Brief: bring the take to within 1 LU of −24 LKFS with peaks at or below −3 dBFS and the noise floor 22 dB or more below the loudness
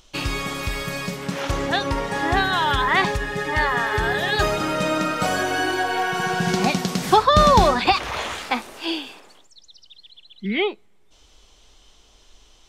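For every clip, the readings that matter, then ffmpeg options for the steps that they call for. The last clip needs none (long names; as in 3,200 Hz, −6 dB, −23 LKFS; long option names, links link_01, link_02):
integrated loudness −21.0 LKFS; sample peak −3.0 dBFS; target loudness −24.0 LKFS
→ -af "volume=-3dB"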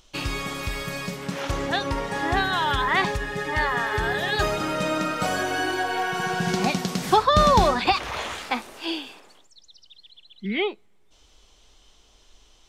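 integrated loudness −24.0 LKFS; sample peak −6.0 dBFS; background noise floor −57 dBFS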